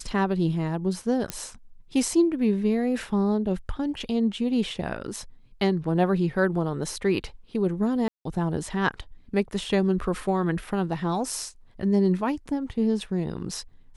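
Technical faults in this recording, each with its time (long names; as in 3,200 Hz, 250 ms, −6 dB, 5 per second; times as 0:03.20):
0:01.30: click −12 dBFS
0:08.08–0:08.25: drop-out 173 ms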